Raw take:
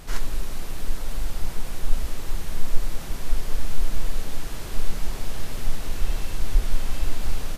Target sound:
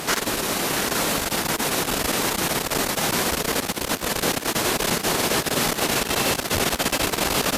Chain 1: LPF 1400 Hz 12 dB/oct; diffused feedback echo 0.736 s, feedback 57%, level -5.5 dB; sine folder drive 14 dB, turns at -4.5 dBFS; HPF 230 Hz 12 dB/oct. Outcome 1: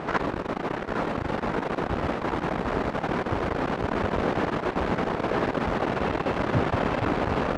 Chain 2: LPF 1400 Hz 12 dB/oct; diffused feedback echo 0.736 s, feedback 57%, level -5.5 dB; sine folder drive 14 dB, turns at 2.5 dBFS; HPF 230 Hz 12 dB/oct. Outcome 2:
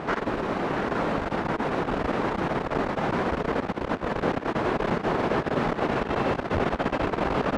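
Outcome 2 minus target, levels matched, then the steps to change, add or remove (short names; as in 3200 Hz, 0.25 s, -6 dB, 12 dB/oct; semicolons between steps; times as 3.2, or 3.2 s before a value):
1000 Hz band +4.0 dB
remove: LPF 1400 Hz 12 dB/oct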